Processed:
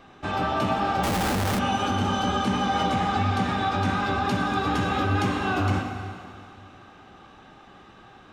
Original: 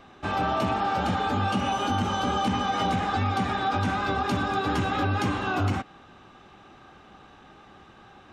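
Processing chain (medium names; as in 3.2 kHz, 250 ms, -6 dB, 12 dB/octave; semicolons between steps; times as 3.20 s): plate-style reverb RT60 2.4 s, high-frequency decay 0.95×, DRR 3.5 dB; 1.03–1.59 s: Schmitt trigger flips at -28.5 dBFS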